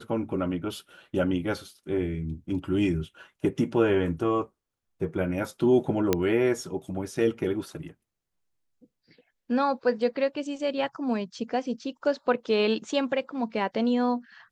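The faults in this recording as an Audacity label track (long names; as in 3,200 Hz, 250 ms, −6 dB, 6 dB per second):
6.130000	6.130000	click −8 dBFS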